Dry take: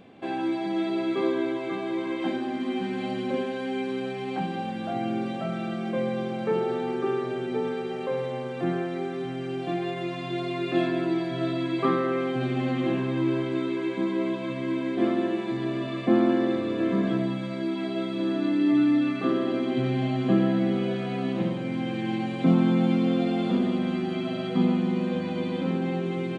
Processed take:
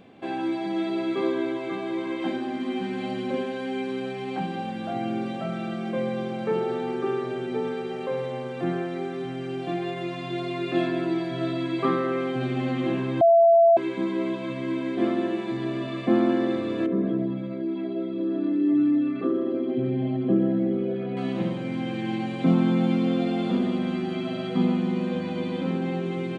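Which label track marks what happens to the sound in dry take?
13.210000	13.770000	bleep 673 Hz -12.5 dBFS
16.860000	21.170000	formant sharpening exponent 1.5

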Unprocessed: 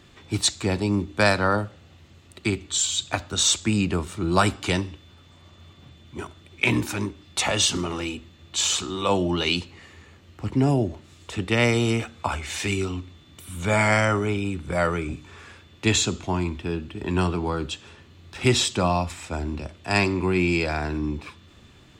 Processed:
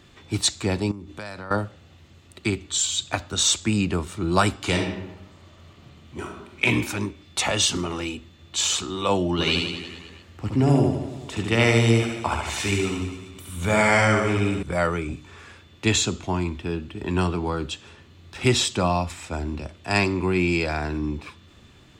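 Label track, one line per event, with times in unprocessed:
0.910000	1.510000	compressor 5:1, threshold -34 dBFS
4.570000	6.660000	reverb throw, RT60 0.99 s, DRR 1.5 dB
9.320000	14.630000	reverse bouncing-ball echo first gap 70 ms, each gap 1.1×, echoes 7

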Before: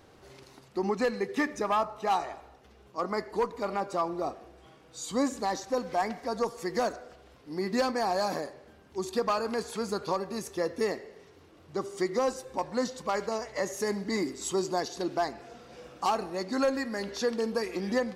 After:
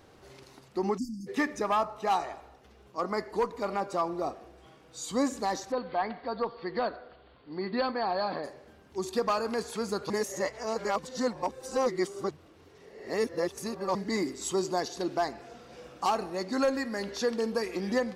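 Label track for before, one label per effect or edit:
0.980000	1.270000	spectral delete 340–4500 Hz
5.720000	8.440000	rippled Chebyshev low-pass 4600 Hz, ripple 3 dB
10.100000	13.950000	reverse

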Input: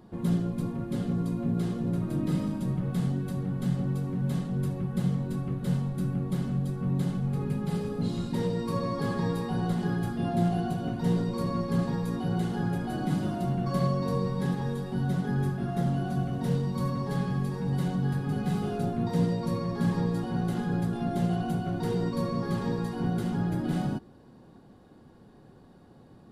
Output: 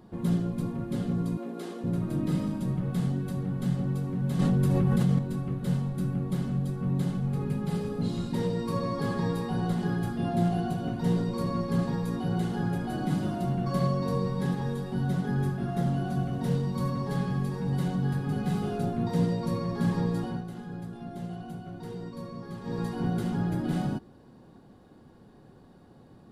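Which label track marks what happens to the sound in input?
1.370000	1.840000	HPF 290 Hz 24 dB/oct
4.390000	5.190000	fast leveller amount 100%
20.260000	22.810000	dip -10 dB, fades 0.18 s

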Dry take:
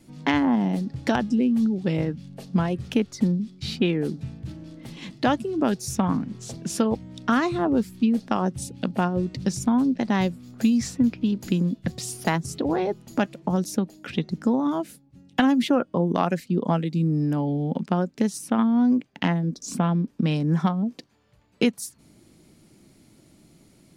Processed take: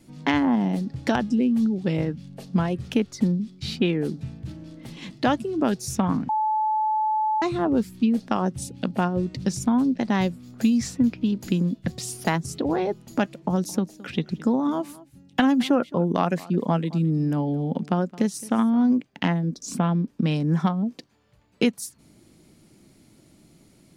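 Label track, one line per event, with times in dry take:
6.290000	7.420000	bleep 865 Hz -20 dBFS
13.420000	18.950000	echo 0.217 s -20 dB

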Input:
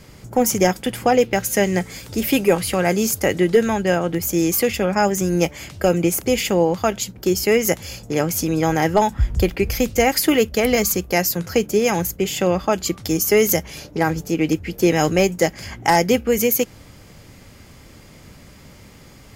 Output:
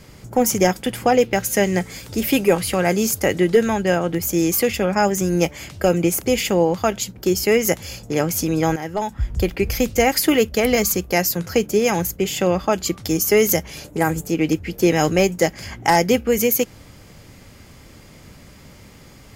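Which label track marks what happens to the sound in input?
8.760000	9.690000	fade in, from -13 dB
13.840000	14.270000	resonant high shelf 6600 Hz +7 dB, Q 3

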